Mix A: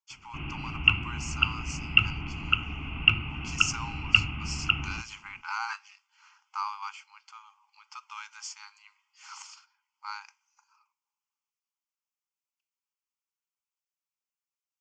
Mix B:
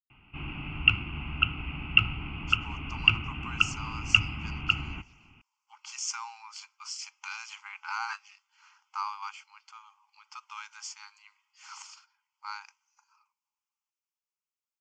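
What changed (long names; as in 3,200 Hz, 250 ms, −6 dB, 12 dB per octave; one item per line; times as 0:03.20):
speech: entry +2.40 s
reverb: off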